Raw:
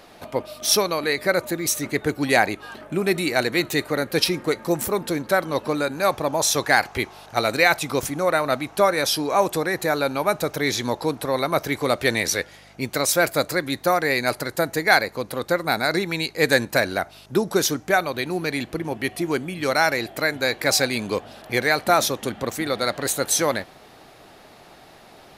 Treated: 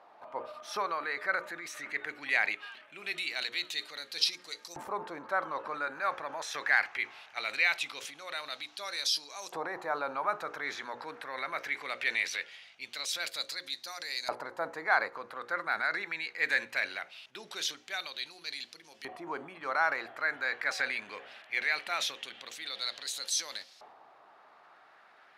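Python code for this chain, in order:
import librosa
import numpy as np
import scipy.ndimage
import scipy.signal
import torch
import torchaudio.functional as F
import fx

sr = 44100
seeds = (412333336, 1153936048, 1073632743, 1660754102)

y = fx.hum_notches(x, sr, base_hz=60, count=9)
y = fx.transient(y, sr, attack_db=-2, sustain_db=6)
y = fx.filter_lfo_bandpass(y, sr, shape='saw_up', hz=0.21, low_hz=900.0, high_hz=5300.0, q=2.1)
y = y * librosa.db_to_amplitude(-3.5)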